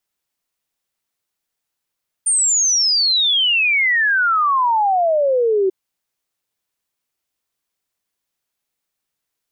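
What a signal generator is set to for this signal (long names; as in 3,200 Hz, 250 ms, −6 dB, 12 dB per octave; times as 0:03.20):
exponential sine sweep 9,100 Hz → 370 Hz 3.44 s −13 dBFS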